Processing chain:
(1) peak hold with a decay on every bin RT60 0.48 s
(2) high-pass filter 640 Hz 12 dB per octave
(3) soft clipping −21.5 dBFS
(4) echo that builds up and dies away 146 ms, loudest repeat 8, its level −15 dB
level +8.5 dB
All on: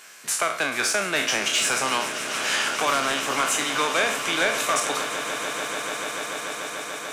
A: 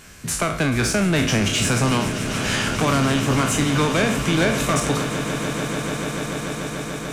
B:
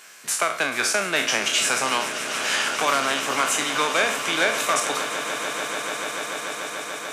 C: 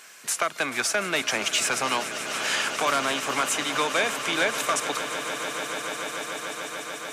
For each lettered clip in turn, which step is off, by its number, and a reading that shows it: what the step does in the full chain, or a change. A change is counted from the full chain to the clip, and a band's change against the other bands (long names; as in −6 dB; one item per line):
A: 2, 125 Hz band +24.0 dB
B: 3, distortion level −19 dB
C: 1, change in integrated loudness −2.0 LU